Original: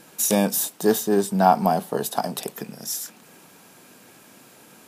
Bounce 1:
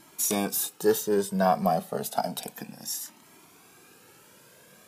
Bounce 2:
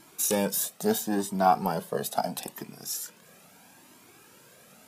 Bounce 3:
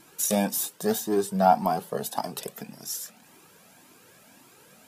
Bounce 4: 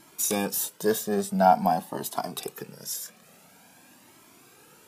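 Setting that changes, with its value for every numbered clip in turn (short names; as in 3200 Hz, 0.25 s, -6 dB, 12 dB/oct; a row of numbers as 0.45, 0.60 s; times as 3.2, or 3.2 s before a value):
cascading flanger, rate: 0.31, 0.76, 1.8, 0.48 Hz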